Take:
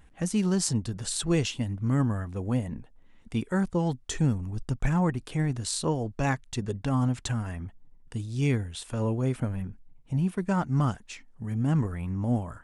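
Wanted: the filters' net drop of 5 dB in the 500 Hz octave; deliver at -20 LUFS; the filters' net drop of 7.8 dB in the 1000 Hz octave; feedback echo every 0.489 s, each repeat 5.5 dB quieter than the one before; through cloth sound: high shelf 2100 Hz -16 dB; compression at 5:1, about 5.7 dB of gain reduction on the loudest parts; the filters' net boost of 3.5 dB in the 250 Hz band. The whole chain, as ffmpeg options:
-af "equalizer=f=250:t=o:g=7,equalizer=f=500:t=o:g=-8,equalizer=f=1k:t=o:g=-4,acompressor=threshold=-24dB:ratio=5,highshelf=f=2.1k:g=-16,aecho=1:1:489|978|1467|1956|2445|2934|3423:0.531|0.281|0.149|0.079|0.0419|0.0222|0.0118,volume=10dB"

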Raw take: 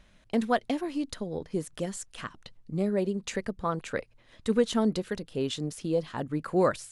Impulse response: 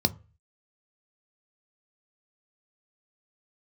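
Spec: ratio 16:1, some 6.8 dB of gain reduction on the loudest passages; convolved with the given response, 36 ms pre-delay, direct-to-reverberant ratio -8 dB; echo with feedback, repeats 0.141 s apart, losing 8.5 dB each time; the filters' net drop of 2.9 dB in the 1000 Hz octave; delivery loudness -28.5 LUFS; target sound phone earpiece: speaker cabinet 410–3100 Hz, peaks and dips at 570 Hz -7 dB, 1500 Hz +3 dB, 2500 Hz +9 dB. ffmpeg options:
-filter_complex "[0:a]equalizer=f=1k:t=o:g=-3.5,acompressor=threshold=-26dB:ratio=16,aecho=1:1:141|282|423|564:0.376|0.143|0.0543|0.0206,asplit=2[a][b];[1:a]atrim=start_sample=2205,adelay=36[c];[b][c]afir=irnorm=-1:irlink=0,volume=-1.5dB[d];[a][d]amix=inputs=2:normalize=0,highpass=410,equalizer=f=570:t=q:w=4:g=-7,equalizer=f=1.5k:t=q:w=4:g=3,equalizer=f=2.5k:t=q:w=4:g=9,lowpass=f=3.1k:w=0.5412,lowpass=f=3.1k:w=1.3066,volume=-2dB"

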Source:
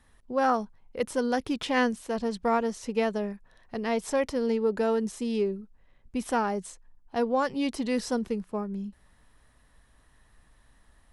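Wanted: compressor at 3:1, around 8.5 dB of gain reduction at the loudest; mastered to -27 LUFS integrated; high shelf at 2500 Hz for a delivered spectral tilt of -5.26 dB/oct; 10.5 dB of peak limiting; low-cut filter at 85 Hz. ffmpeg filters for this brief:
-af "highpass=85,highshelf=f=2.5k:g=-8.5,acompressor=threshold=-33dB:ratio=3,volume=15dB,alimiter=limit=-18dB:level=0:latency=1"

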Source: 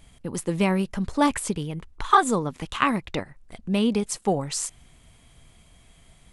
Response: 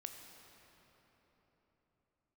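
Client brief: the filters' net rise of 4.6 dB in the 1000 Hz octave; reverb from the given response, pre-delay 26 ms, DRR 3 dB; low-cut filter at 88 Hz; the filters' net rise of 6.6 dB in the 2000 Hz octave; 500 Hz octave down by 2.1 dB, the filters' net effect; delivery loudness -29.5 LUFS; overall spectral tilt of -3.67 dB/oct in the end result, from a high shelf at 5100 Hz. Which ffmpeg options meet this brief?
-filter_complex "[0:a]highpass=88,equalizer=f=500:t=o:g=-4,equalizer=f=1k:t=o:g=4.5,equalizer=f=2k:t=o:g=6.5,highshelf=f=5.1k:g=5,asplit=2[a][b];[1:a]atrim=start_sample=2205,adelay=26[c];[b][c]afir=irnorm=-1:irlink=0,volume=1dB[d];[a][d]amix=inputs=2:normalize=0,volume=-9dB"

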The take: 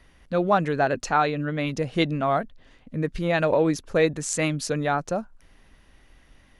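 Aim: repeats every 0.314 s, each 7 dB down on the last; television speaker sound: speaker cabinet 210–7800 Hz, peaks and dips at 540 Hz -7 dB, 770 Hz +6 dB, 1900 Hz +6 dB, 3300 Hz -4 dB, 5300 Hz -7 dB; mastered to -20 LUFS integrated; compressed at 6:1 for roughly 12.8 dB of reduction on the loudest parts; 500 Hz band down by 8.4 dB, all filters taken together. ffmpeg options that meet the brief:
-af "equalizer=f=500:t=o:g=-9,acompressor=threshold=-32dB:ratio=6,highpass=f=210:w=0.5412,highpass=f=210:w=1.3066,equalizer=f=540:t=q:w=4:g=-7,equalizer=f=770:t=q:w=4:g=6,equalizer=f=1.9k:t=q:w=4:g=6,equalizer=f=3.3k:t=q:w=4:g=-4,equalizer=f=5.3k:t=q:w=4:g=-7,lowpass=f=7.8k:w=0.5412,lowpass=f=7.8k:w=1.3066,aecho=1:1:314|628|942|1256|1570:0.447|0.201|0.0905|0.0407|0.0183,volume=16.5dB"

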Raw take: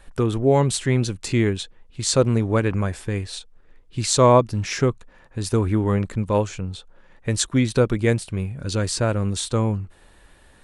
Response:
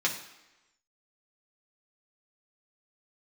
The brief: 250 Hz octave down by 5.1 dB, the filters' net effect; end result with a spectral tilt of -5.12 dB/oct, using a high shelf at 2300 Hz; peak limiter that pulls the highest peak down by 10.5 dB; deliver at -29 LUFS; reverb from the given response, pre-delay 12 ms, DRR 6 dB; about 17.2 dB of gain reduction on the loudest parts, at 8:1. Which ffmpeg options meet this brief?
-filter_complex "[0:a]equalizer=f=250:t=o:g=-6.5,highshelf=f=2.3k:g=-8,acompressor=threshold=-30dB:ratio=8,alimiter=level_in=2dB:limit=-24dB:level=0:latency=1,volume=-2dB,asplit=2[a][b];[1:a]atrim=start_sample=2205,adelay=12[c];[b][c]afir=irnorm=-1:irlink=0,volume=-15dB[d];[a][d]amix=inputs=2:normalize=0,volume=7.5dB"

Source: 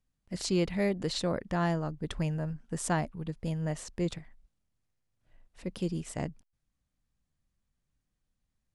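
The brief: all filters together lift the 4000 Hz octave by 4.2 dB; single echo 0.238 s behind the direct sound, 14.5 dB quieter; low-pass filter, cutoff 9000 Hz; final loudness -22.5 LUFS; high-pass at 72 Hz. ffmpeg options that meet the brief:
-af "highpass=72,lowpass=9k,equalizer=f=4k:t=o:g=5,aecho=1:1:238:0.188,volume=10.5dB"

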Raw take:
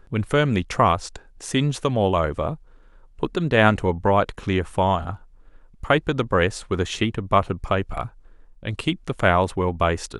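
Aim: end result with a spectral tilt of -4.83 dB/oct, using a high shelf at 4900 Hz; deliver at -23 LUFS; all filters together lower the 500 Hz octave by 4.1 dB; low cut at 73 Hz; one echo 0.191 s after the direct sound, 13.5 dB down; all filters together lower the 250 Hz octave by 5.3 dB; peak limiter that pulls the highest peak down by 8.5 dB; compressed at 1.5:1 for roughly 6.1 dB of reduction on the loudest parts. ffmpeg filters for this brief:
-af "highpass=73,equalizer=f=250:t=o:g=-6.5,equalizer=f=500:t=o:g=-3.5,highshelf=f=4.9k:g=-9,acompressor=threshold=-31dB:ratio=1.5,alimiter=limit=-17.5dB:level=0:latency=1,aecho=1:1:191:0.211,volume=8.5dB"

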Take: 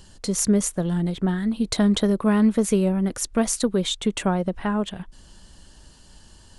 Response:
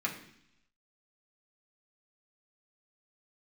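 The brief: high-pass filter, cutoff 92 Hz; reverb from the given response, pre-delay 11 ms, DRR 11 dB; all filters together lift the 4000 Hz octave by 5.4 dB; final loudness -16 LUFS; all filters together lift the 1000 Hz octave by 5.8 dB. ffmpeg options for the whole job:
-filter_complex "[0:a]highpass=92,equalizer=f=1k:t=o:g=7,equalizer=f=4k:t=o:g=6,asplit=2[a][b];[1:a]atrim=start_sample=2205,adelay=11[c];[b][c]afir=irnorm=-1:irlink=0,volume=-16.5dB[d];[a][d]amix=inputs=2:normalize=0,volume=5dB"

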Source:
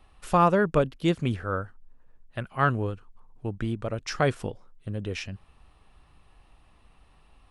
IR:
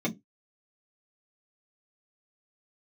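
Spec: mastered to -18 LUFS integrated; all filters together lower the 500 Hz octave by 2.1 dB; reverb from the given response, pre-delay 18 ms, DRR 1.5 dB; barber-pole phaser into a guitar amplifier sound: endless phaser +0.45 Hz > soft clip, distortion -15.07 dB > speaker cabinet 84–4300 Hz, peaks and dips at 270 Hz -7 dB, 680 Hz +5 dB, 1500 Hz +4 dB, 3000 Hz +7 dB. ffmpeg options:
-filter_complex "[0:a]equalizer=f=500:t=o:g=-4.5,asplit=2[a][b];[1:a]atrim=start_sample=2205,adelay=18[c];[b][c]afir=irnorm=-1:irlink=0,volume=-9dB[d];[a][d]amix=inputs=2:normalize=0,asplit=2[e][f];[f]afreqshift=0.45[g];[e][g]amix=inputs=2:normalize=1,asoftclip=threshold=-14.5dB,highpass=84,equalizer=f=270:t=q:w=4:g=-7,equalizer=f=680:t=q:w=4:g=5,equalizer=f=1.5k:t=q:w=4:g=4,equalizer=f=3k:t=q:w=4:g=7,lowpass=f=4.3k:w=0.5412,lowpass=f=4.3k:w=1.3066,volume=9dB"

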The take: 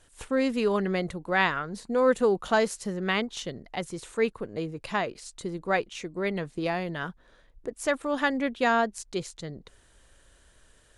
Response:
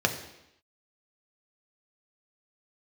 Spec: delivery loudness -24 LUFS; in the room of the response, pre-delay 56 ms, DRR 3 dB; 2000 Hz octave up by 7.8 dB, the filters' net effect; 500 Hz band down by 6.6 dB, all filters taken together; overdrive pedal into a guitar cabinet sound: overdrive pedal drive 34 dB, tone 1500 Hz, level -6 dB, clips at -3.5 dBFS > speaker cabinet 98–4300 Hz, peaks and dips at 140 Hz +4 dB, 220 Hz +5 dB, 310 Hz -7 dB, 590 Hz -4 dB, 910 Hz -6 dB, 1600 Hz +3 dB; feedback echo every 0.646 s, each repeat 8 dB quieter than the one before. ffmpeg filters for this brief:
-filter_complex "[0:a]equalizer=f=500:t=o:g=-5.5,equalizer=f=2k:t=o:g=8,aecho=1:1:646|1292|1938|2584|3230:0.398|0.159|0.0637|0.0255|0.0102,asplit=2[a][b];[1:a]atrim=start_sample=2205,adelay=56[c];[b][c]afir=irnorm=-1:irlink=0,volume=-15dB[d];[a][d]amix=inputs=2:normalize=0,asplit=2[e][f];[f]highpass=f=720:p=1,volume=34dB,asoftclip=type=tanh:threshold=-3.5dB[g];[e][g]amix=inputs=2:normalize=0,lowpass=f=1.5k:p=1,volume=-6dB,highpass=98,equalizer=f=140:t=q:w=4:g=4,equalizer=f=220:t=q:w=4:g=5,equalizer=f=310:t=q:w=4:g=-7,equalizer=f=590:t=q:w=4:g=-4,equalizer=f=910:t=q:w=4:g=-6,equalizer=f=1.6k:t=q:w=4:g=3,lowpass=f=4.3k:w=0.5412,lowpass=f=4.3k:w=1.3066,volume=-10.5dB"

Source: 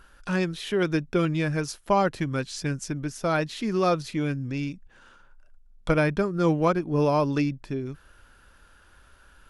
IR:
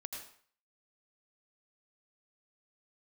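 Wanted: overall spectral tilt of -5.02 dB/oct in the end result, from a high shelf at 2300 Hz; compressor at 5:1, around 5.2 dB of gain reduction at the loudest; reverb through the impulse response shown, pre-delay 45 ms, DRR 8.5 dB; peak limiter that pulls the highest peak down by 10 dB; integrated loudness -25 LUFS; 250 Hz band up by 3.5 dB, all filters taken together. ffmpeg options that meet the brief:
-filter_complex "[0:a]equalizer=f=250:t=o:g=5,highshelf=f=2.3k:g=6.5,acompressor=threshold=-21dB:ratio=5,alimiter=limit=-22dB:level=0:latency=1,asplit=2[a][b];[1:a]atrim=start_sample=2205,adelay=45[c];[b][c]afir=irnorm=-1:irlink=0,volume=-6.5dB[d];[a][d]amix=inputs=2:normalize=0,volume=6dB"

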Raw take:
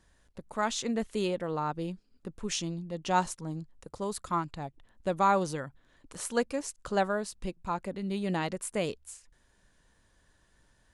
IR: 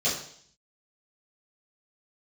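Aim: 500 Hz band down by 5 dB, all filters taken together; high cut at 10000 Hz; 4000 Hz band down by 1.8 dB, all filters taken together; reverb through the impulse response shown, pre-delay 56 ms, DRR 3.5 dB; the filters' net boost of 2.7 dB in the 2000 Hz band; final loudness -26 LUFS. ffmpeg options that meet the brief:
-filter_complex "[0:a]lowpass=10k,equalizer=f=500:t=o:g=-6.5,equalizer=f=2k:t=o:g=5,equalizer=f=4k:t=o:g=-4,asplit=2[a][b];[1:a]atrim=start_sample=2205,adelay=56[c];[b][c]afir=irnorm=-1:irlink=0,volume=-14.5dB[d];[a][d]amix=inputs=2:normalize=0,volume=6dB"

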